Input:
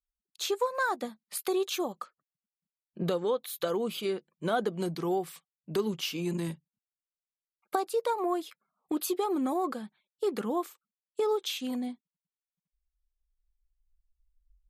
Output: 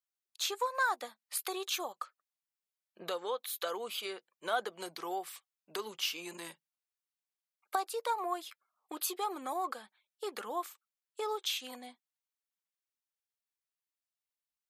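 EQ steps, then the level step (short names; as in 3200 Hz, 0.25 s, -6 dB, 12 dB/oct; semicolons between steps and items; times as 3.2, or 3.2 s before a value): HPF 750 Hz 12 dB/oct; 0.0 dB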